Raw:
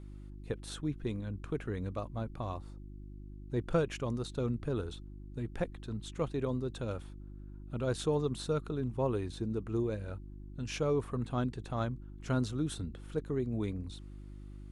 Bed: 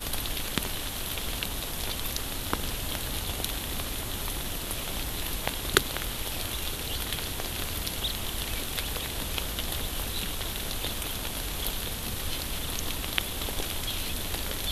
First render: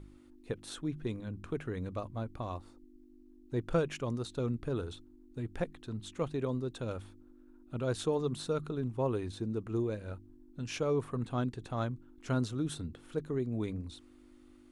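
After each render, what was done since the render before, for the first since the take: de-hum 50 Hz, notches 4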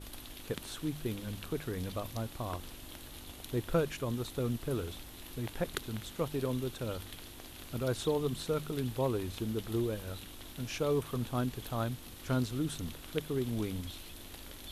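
add bed -16 dB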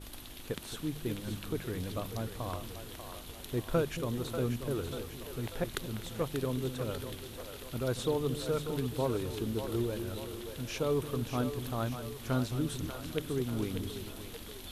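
two-band feedback delay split 400 Hz, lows 224 ms, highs 590 ms, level -8 dB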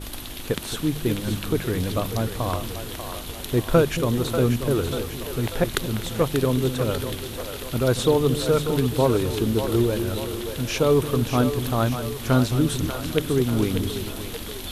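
trim +12 dB

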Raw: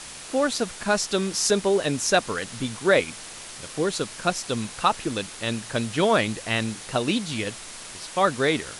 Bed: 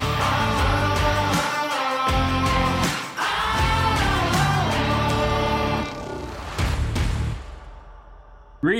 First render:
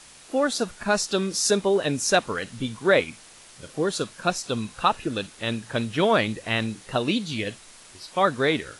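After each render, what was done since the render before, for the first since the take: noise print and reduce 9 dB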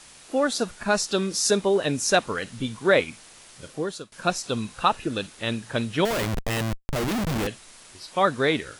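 3.65–4.12 s: fade out, to -22.5 dB; 6.05–7.47 s: Schmitt trigger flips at -29 dBFS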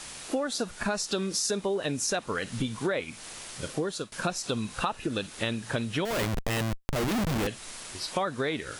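in parallel at +1 dB: peak limiter -15.5 dBFS, peak gain reduction 9.5 dB; on the sum: compression 6:1, threshold -27 dBFS, peak gain reduction 15.5 dB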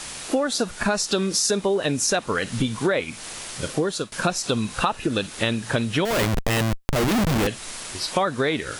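trim +7 dB

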